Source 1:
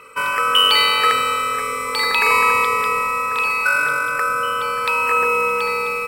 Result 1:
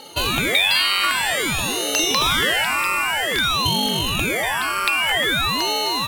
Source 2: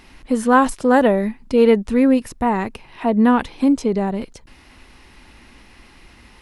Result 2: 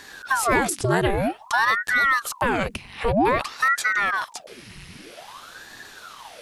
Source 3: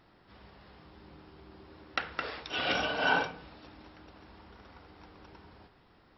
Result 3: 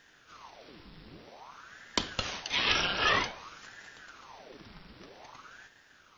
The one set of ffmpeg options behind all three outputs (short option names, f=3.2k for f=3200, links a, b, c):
-af "equalizer=f=520:w=0.37:g=-14,acontrast=54,highpass=40,acompressor=threshold=-22dB:ratio=2.5,aeval=exprs='val(0)*sin(2*PI*910*n/s+910*0.9/0.52*sin(2*PI*0.52*n/s))':c=same,volume=6dB"